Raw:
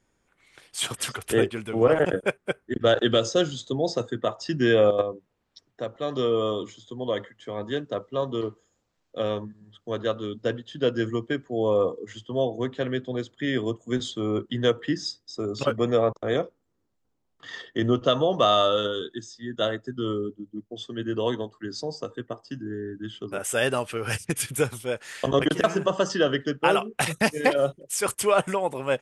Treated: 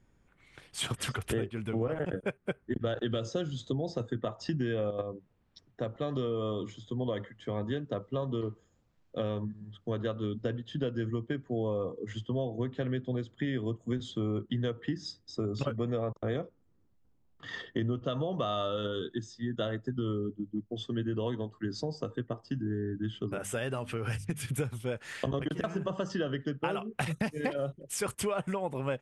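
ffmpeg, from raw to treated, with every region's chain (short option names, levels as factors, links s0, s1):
-filter_complex "[0:a]asettb=1/sr,asplit=3[s0][s1][s2];[s0]atrim=end=23.334[s3];[s1]atrim=start=23.33:end=24.52,asetpts=PTS-STARTPTS,afade=t=in:d=0.004:c=qsin,afade=t=out:st=1.186:d=0.004:c=qsin,acompressor=threshold=0.02:ratio=1.5:attack=3.2:release=140:knee=1:detection=peak,bandreject=f=50:t=h:w=6,bandreject=f=100:t=h:w=6,bandreject=f=150:t=h:w=6,bandreject=f=200:t=h:w=6,bandreject=f=250:t=h:w=6[s4];[s2]atrim=start=24.516[s5];[s3][s4]acrossfade=d=0.004:c1=hsin:c2=qsin[s6];[s6][s5]acrossfade=d=0.004:c1=qsin:c2=hsin,bass=f=250:g=10,treble=f=4000:g=-6,acompressor=threshold=0.0398:ratio=6,volume=0.841"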